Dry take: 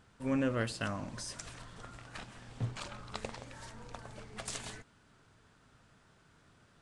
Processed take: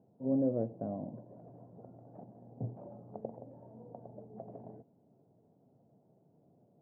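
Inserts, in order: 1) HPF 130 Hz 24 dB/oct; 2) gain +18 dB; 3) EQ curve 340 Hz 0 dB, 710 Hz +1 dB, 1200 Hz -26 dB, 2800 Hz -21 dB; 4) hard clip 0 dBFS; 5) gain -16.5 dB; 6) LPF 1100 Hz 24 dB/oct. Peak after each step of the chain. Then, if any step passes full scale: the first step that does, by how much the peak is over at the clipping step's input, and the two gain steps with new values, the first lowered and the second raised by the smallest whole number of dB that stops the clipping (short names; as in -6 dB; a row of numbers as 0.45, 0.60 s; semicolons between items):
-19.5, -1.5, -4.5, -4.5, -21.0, -21.0 dBFS; no overload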